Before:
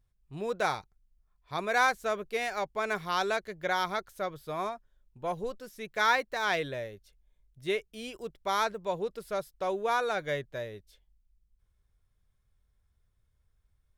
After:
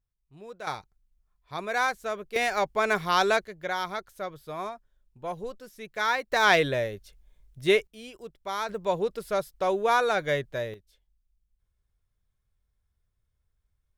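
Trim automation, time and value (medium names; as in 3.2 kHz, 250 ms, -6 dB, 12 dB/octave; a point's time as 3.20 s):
-10.5 dB
from 0.67 s -1 dB
from 2.36 s +6.5 dB
from 3.45 s -1 dB
from 6.32 s +9 dB
from 7.87 s -3 dB
from 8.69 s +5.5 dB
from 10.74 s -4 dB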